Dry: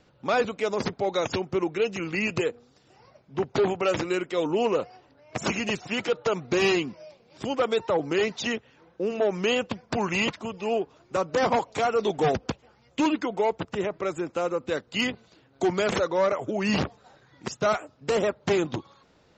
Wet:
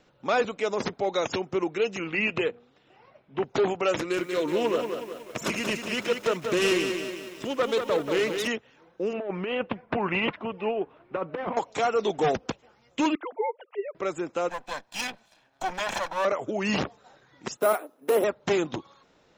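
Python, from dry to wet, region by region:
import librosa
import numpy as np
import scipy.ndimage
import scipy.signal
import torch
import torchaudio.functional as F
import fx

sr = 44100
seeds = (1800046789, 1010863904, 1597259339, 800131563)

y = fx.chain(x, sr, fx.high_shelf_res(hz=4300.0, db=-11.0, q=1.5),
    fx.hum_notches(base_hz=60, count=3), at=(2.02, 3.44))
y = fx.chain(y, sr, fx.self_delay(depth_ms=0.077),
    fx.peak_eq(hz=790.0, db=-9.5, octaves=0.24),
    fx.echo_crushed(ms=185, feedback_pct=55, bits=8, wet_db=-6.0), at=(3.98, 8.48))
y = fx.chain(y, sr, fx.lowpass(hz=2800.0, slope=24),
    fx.over_compress(threshold_db=-26.0, ratio=-0.5), at=(9.13, 11.57))
y = fx.chain(y, sr, fx.sine_speech(),
    fx.highpass(hz=560.0, slope=6),
    fx.air_absorb(metres=310.0), at=(13.15, 13.95))
y = fx.chain(y, sr, fx.lower_of_two(delay_ms=1.2),
    fx.low_shelf(hz=280.0, db=-9.0), at=(14.49, 16.25))
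y = fx.chain(y, sr, fx.highpass(hz=280.0, slope=24),
    fx.tilt_eq(slope=-3.0),
    fx.resample_bad(factor=4, down='none', up='hold'), at=(17.57, 18.24))
y = fx.peak_eq(y, sr, hz=81.0, db=-7.5, octaves=2.1)
y = fx.notch(y, sr, hz=4600.0, q=13.0)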